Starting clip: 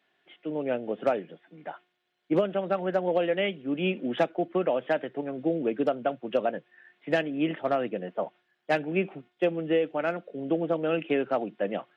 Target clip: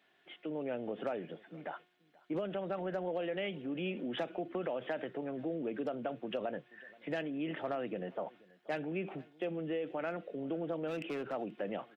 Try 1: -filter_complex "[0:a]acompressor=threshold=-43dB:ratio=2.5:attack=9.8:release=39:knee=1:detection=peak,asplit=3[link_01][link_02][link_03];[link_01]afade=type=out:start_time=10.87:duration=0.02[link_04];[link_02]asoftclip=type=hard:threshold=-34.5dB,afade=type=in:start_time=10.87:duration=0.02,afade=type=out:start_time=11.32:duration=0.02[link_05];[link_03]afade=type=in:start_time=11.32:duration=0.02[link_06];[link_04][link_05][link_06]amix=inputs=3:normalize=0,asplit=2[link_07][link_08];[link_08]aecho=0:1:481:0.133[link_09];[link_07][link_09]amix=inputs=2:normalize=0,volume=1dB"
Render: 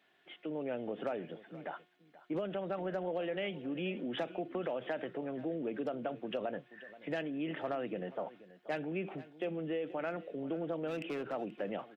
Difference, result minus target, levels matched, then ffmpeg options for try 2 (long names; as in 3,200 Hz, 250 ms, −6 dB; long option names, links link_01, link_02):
echo-to-direct +6 dB
-filter_complex "[0:a]acompressor=threshold=-43dB:ratio=2.5:attack=9.8:release=39:knee=1:detection=peak,asplit=3[link_01][link_02][link_03];[link_01]afade=type=out:start_time=10.87:duration=0.02[link_04];[link_02]asoftclip=type=hard:threshold=-34.5dB,afade=type=in:start_time=10.87:duration=0.02,afade=type=out:start_time=11.32:duration=0.02[link_05];[link_03]afade=type=in:start_time=11.32:duration=0.02[link_06];[link_04][link_05][link_06]amix=inputs=3:normalize=0,asplit=2[link_07][link_08];[link_08]aecho=0:1:481:0.0668[link_09];[link_07][link_09]amix=inputs=2:normalize=0,volume=1dB"